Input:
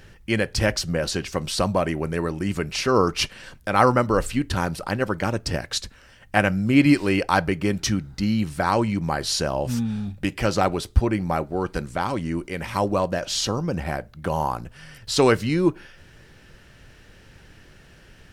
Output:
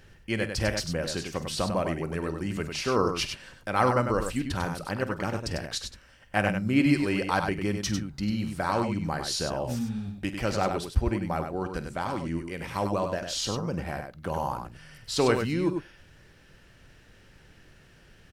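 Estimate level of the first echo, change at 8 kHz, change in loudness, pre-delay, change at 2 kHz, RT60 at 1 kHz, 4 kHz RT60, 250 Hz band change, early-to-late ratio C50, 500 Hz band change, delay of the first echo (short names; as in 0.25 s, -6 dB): -14.5 dB, -5.5 dB, -5.5 dB, none, -5.5 dB, none, none, -5.5 dB, none, -5.5 dB, 48 ms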